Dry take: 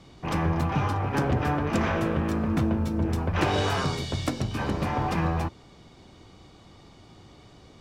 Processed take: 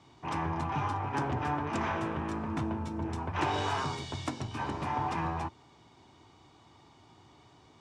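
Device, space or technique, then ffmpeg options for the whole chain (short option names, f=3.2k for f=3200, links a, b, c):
car door speaker: -af "highpass=95,equalizer=f=190:t=q:w=4:g=-9,equalizer=f=520:t=q:w=4:g=-7,equalizer=f=930:t=q:w=4:g=8,equalizer=f=4.5k:t=q:w=4:g=-3,lowpass=f=9.3k:w=0.5412,lowpass=f=9.3k:w=1.3066,volume=-6dB"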